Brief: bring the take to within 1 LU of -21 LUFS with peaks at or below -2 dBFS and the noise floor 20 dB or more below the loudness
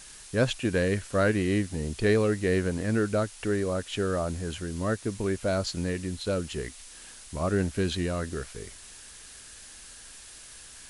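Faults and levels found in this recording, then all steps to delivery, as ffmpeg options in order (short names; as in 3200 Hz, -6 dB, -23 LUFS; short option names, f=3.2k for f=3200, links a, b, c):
noise floor -48 dBFS; noise floor target -49 dBFS; loudness -28.5 LUFS; peak -12.5 dBFS; loudness target -21.0 LUFS
-> -af "afftdn=nr=6:nf=-48"
-af "volume=7.5dB"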